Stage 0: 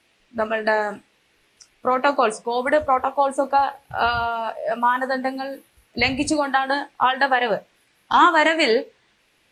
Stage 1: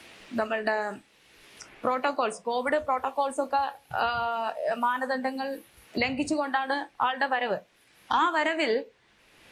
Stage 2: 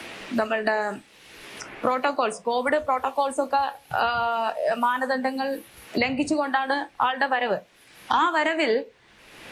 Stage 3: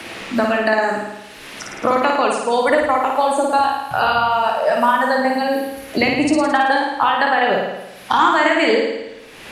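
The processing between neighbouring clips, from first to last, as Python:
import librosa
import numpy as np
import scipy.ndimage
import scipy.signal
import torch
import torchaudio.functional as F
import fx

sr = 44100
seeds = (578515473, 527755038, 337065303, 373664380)

y1 = fx.band_squash(x, sr, depth_pct=70)
y1 = y1 * librosa.db_to_amplitude(-7.5)
y2 = fx.band_squash(y1, sr, depth_pct=40)
y2 = y2 * librosa.db_to_amplitude(3.5)
y3 = fx.room_flutter(y2, sr, wall_m=9.4, rt60_s=1.0)
y3 = y3 * librosa.db_to_amplitude(5.0)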